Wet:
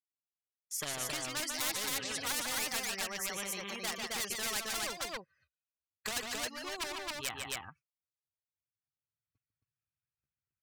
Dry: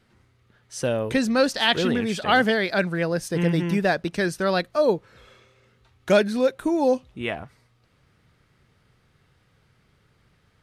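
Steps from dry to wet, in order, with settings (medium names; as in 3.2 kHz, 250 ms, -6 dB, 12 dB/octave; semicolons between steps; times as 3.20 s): expander on every frequency bin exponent 2; recorder AGC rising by 12 dB/s; gate -55 dBFS, range -35 dB; in parallel at +1 dB: compression 20:1, threshold -28 dBFS, peak gain reduction 14 dB; on the sum: band-pass filter 1.3 kHz, Q 0.94; hard clipper -25 dBFS, distortion -7 dB; pitch shift +2.5 st; multi-tap echo 148/269 ms -11.5/-3.5 dB; spectrum-flattening compressor 4:1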